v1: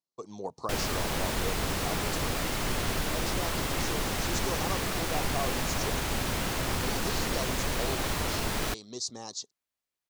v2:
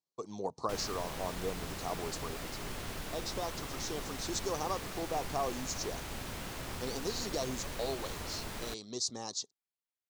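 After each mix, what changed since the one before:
background -11.0 dB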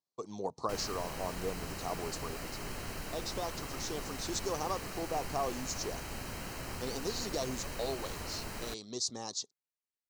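background: add Butterworth band-stop 3500 Hz, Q 6.9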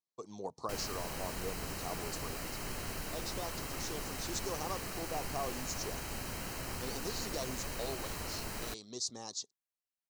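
speech -4.5 dB; master: add high shelf 6500 Hz +4.5 dB

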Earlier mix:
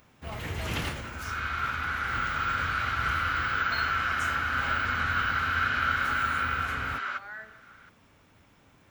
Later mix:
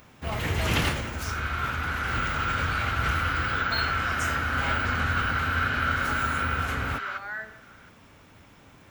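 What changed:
speech +6.5 dB; first sound +7.0 dB

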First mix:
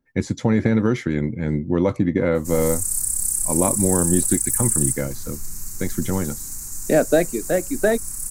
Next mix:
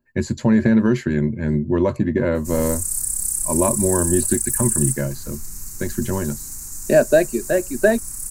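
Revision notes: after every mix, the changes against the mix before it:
speech: add ripple EQ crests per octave 1.4, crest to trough 10 dB; reverb: off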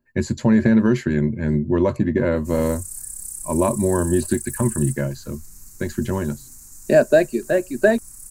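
background -10.0 dB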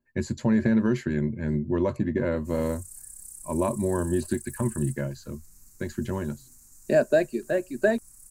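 speech -6.5 dB; background -10.5 dB

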